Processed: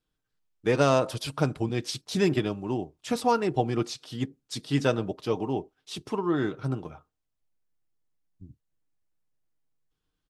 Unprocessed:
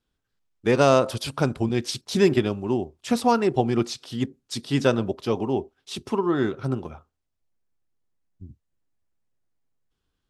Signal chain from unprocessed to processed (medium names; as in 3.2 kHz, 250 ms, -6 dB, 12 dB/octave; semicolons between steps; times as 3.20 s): comb 6.5 ms, depth 36%; trim -4 dB